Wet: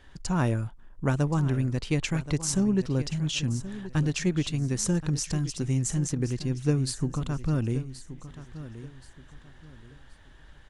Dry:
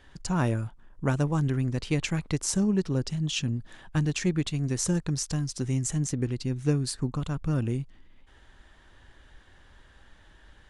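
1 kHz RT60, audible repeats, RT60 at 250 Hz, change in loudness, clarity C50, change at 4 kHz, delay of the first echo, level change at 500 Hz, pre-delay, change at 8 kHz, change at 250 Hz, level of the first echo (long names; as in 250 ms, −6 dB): no reverb audible, 3, no reverb audible, +0.5 dB, no reverb audible, 0.0 dB, 1,076 ms, +0.5 dB, no reverb audible, 0.0 dB, +0.5 dB, −14.0 dB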